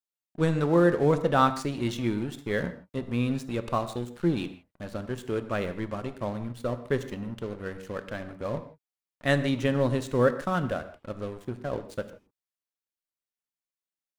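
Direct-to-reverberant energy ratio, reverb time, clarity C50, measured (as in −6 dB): 10.0 dB, non-exponential decay, 12.0 dB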